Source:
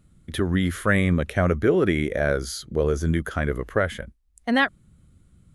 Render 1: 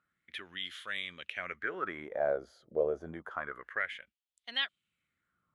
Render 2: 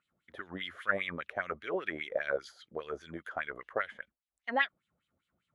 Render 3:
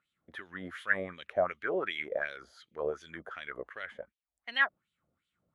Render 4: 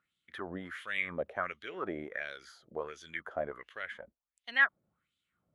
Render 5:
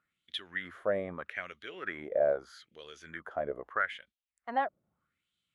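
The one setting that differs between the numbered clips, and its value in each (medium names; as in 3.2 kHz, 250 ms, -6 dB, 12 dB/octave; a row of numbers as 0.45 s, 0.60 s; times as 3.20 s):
wah-wah, rate: 0.28 Hz, 5 Hz, 2.7 Hz, 1.4 Hz, 0.79 Hz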